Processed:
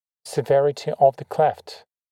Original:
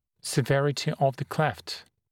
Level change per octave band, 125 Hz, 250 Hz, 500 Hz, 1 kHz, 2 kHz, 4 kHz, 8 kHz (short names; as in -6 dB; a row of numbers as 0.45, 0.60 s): -4.5 dB, -4.0 dB, +9.0 dB, +8.5 dB, -4.5 dB, -4.5 dB, n/a